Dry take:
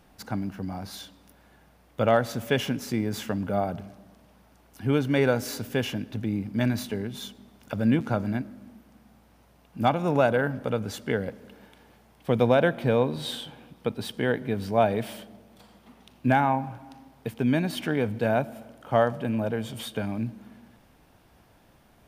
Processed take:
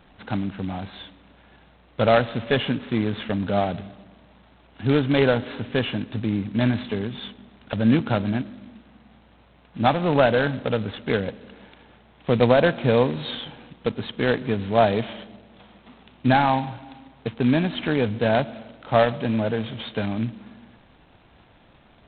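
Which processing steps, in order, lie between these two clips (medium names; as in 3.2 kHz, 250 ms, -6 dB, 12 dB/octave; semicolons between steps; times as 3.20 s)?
15.21–16.83 s: de-hum 230.2 Hz, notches 17; trim +4 dB; G.726 16 kbps 8 kHz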